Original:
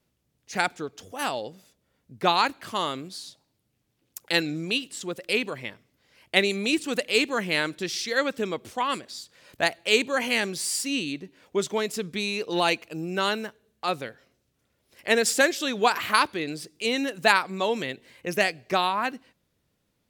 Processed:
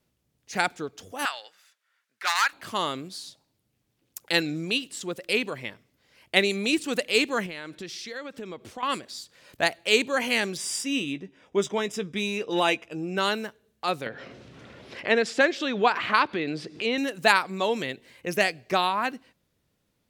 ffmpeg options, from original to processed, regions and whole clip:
-filter_complex "[0:a]asettb=1/sr,asplit=3[s0][s1][s2];[s0]atrim=end=1.254[s3];[s1]atrim=start=1.25:end=2.53,asetpts=PTS-STARTPTS,afade=t=in:d=0.004:c=qsin,afade=t=out:st=1.276:d=0.004:c=qsin,highshelf=f=11000:g=-7.5,aeval=exprs='0.158*(abs(mod(val(0)/0.158+3,4)-2)-1)':c=same,highpass=f=1500:t=q:w=2.3[s4];[s2]atrim=start=2.526[s5];[s3][s4]acrossfade=d=0.004:c1=hsin:c2=qsin[s6];[s6][s5]acrossfade=d=0.004:c1=qsin:c2=hsin,asettb=1/sr,asplit=3[s7][s8][s9];[s7]atrim=end=7.464[s10];[s8]atrim=start=7.46:end=8.83,asetpts=PTS-STARTPTS,afade=t=in:d=0.004:c=qsin,afade=t=out:st=1.366:d=0.004:c=qsin,highshelf=f=6900:g=-8,acompressor=threshold=0.0178:ratio=4:attack=3.2:release=140:knee=1:detection=peak[s11];[s9]atrim=start=8.826[s12];[s10][s11]acrossfade=d=0.004:c1=hsin:c2=qsin[s13];[s13][s12]acrossfade=d=0.004:c1=qsin:c2=hsin,asettb=1/sr,asplit=3[s14][s15][s16];[s14]atrim=end=10.574[s17];[s15]atrim=start=10.57:end=13.18,asetpts=PTS-STARTPTS,afade=t=in:d=0.004:c=qsin,afade=t=out:st=2.606:d=0.004:c=qsin,adynamicsmooth=sensitivity=5:basefreq=7400,asuperstop=centerf=4300:order=12:qfactor=6.3,asplit=2[s18][s19];[s19]adelay=15,volume=0.266[s20];[s18][s20]amix=inputs=2:normalize=0,atrim=end_sample=115101[s21];[s16]atrim=start=13.176[s22];[s17][s21]acrossfade=d=0.004:c1=hsin:c2=qsin[s23];[s23][s22]acrossfade=d=0.004:c1=qsin:c2=hsin,asettb=1/sr,asplit=3[s24][s25][s26];[s24]atrim=end=14.064[s27];[s25]atrim=start=14.06:end=16.98,asetpts=PTS-STARTPTS,afade=t=in:d=0.004:c=qsin,afade=t=out:st=2.916:d=0.004:c=qsin,acompressor=mode=upward:threshold=0.0794:ratio=2.5:attack=3.2:release=140:knee=2.83:detection=peak,highpass=110,lowpass=3400[s28];[s26]atrim=start=16.976[s29];[s27][s28]acrossfade=d=0.004:c1=hsin:c2=qsin[s30];[s30][s29]acrossfade=d=0.004:c1=qsin:c2=hsin"

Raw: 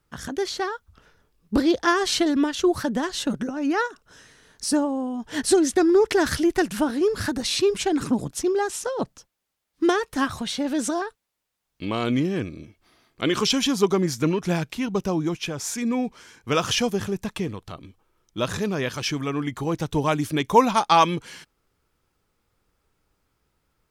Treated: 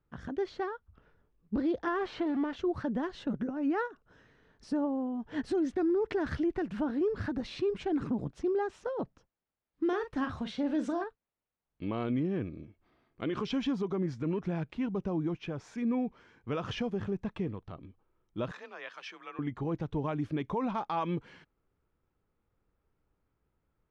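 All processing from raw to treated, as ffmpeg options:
-filter_complex "[0:a]asettb=1/sr,asplit=3[s0][s1][s2];[s0]atrim=end=1.884[s3];[s1]atrim=start=1.88:end=2.56,asetpts=PTS-STARTPTS,afade=t=in:d=0.004:c=qsin,afade=t=out:st=0.676:d=0.004:c=qsin,aeval=exprs='val(0)+0.5*0.0631*sgn(val(0))':c=same,lowpass=f=1800:p=1,lowshelf=f=340:g=-10[s4];[s2]atrim=start=2.556[s5];[s3][s4]acrossfade=d=0.004:c1=hsin:c2=qsin[s6];[s6][s5]acrossfade=d=0.004:c1=qsin:c2=hsin,asettb=1/sr,asplit=3[s7][s8][s9];[s7]atrim=end=9.864[s10];[s8]atrim=start=9.86:end=11.04,asetpts=PTS-STARTPTS,afade=t=in:d=0.004:c=qsin,afade=t=out:st=1.176:d=0.004:c=qsin,highshelf=f=2700:g=5.5,asplit=2[s11][s12];[s12]adelay=42,volume=0.316[s13];[s11][s13]amix=inputs=2:normalize=0,atrim=end_sample=52038[s14];[s9]atrim=start=11.036[s15];[s10][s14]acrossfade=d=0.004:c1=hsin:c2=qsin[s16];[s16][s15]acrossfade=d=0.004:c1=qsin:c2=hsin,asettb=1/sr,asplit=3[s17][s18][s19];[s17]atrim=end=18.514[s20];[s18]atrim=start=18.51:end=19.39,asetpts=PTS-STARTPTS,afade=t=in:d=0.004:c=qsin,afade=t=out:st=0.876:d=0.004:c=qsin,highpass=1000,afreqshift=31[s21];[s19]atrim=start=19.386[s22];[s20][s21]acrossfade=d=0.004:c1=hsin:c2=qsin[s23];[s23][s22]acrossfade=d=0.004:c1=qsin:c2=hsin,lowpass=2600,tiltshelf=f=870:g=3.5,alimiter=limit=0.178:level=0:latency=1:release=72,volume=0.376"

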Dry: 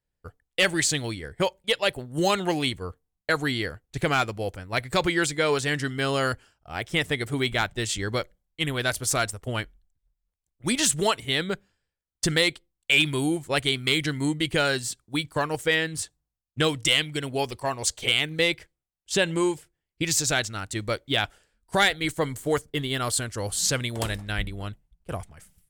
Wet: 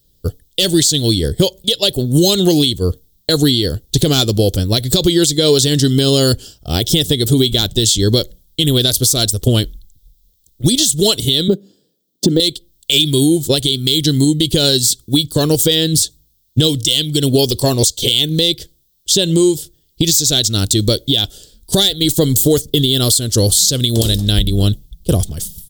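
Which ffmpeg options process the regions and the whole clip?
-filter_complex "[0:a]asettb=1/sr,asplit=3[s0][s1][s2];[s0]atrim=end=11.484[s3];[s1]atrim=start=11.48:end=12.4,asetpts=PTS-STARTPTS,afade=t=in:d=0.004:c=qsin,afade=t=out:st=0.916:d=0.004:c=qsin,highpass=f=200:w=0.5412,highpass=f=200:w=1.3066,deesser=0.95,tiltshelf=f=940:g=9[s4];[s2]atrim=start=12.396[s5];[s3][s4]acrossfade=d=0.004:c1=hsin:c2=qsin[s6];[s6][s5]acrossfade=d=0.004:c1=qsin:c2=hsin,firequalizer=gain_entry='entry(380,0);entry(870,-18);entry(2300,-20);entry(3400,6);entry(9500,2);entry(15000,13)':delay=0.05:min_phase=1,acompressor=threshold=0.0251:ratio=12,alimiter=level_in=18.8:limit=0.891:release=50:level=0:latency=1,volume=0.891"

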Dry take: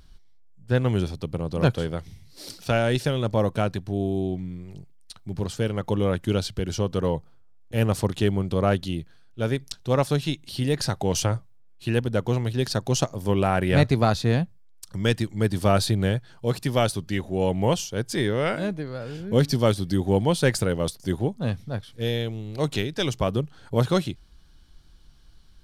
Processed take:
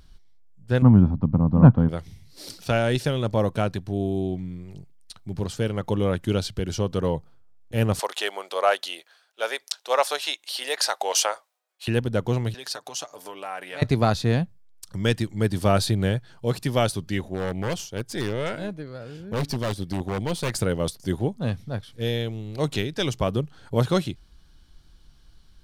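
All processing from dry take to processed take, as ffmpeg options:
-filter_complex "[0:a]asettb=1/sr,asplit=3[s0][s1][s2];[s0]atrim=end=0.824[s3];[s1]atrim=start=0.82:end=1.89,asetpts=PTS-STARTPTS,afade=t=in:d=0.004:c=qsin,afade=t=out:st=1.066:d=0.004:c=qsin,lowpass=f=1000:t=q:w=2.4,lowshelf=f=310:t=q:w=3:g=7.5[s4];[s2]atrim=start=1.886[s5];[s3][s4]acrossfade=d=0.004:c1=hsin:c2=qsin[s6];[s6][s5]acrossfade=d=0.004:c1=qsin:c2=hsin,asettb=1/sr,asplit=3[s7][s8][s9];[s7]atrim=end=7.994[s10];[s8]atrim=start=7.99:end=11.88,asetpts=PTS-STARTPTS,afade=t=in:d=0.004:c=qsin,afade=t=out:st=3.886:d=0.004:c=qsin,highpass=f=600:w=0.5412,highpass=f=600:w=1.3066,acontrast=54[s11];[s9]atrim=start=11.876[s12];[s10][s11]acrossfade=d=0.004:c1=hsin:c2=qsin[s13];[s13][s12]acrossfade=d=0.004:c1=qsin:c2=hsin,asettb=1/sr,asplit=3[s14][s15][s16];[s14]atrim=end=12.544[s17];[s15]atrim=start=12.54:end=13.82,asetpts=PTS-STARTPTS,afade=t=in:d=0.004:c=qsin,afade=t=out:st=1.276:d=0.004:c=qsin,acompressor=threshold=0.0562:ratio=5:attack=3.2:release=140:knee=1:detection=peak,highpass=630,aecho=1:1:6.8:0.45,atrim=end_sample=56448[s18];[s16]atrim=start=13.816[s19];[s17][s18]acrossfade=d=0.004:c1=hsin:c2=qsin[s20];[s20][s19]acrossfade=d=0.004:c1=qsin:c2=hsin,asettb=1/sr,asplit=3[s21][s22][s23];[s21]atrim=end=17.284[s24];[s22]atrim=start=17.28:end=20.56,asetpts=PTS-STARTPTS,afade=t=in:d=0.004:c=qsin,afade=t=out:st=3.276:d=0.004:c=qsin,aeval=exprs='(tanh(6.31*val(0)+0.75)-tanh(0.75))/6.31':c=same,aeval=exprs='0.141*(abs(mod(val(0)/0.141+3,4)-2)-1)':c=same[s25];[s23]atrim=start=20.556[s26];[s24][s25]acrossfade=d=0.004:c1=hsin:c2=qsin[s27];[s27][s26]acrossfade=d=0.004:c1=qsin:c2=hsin"

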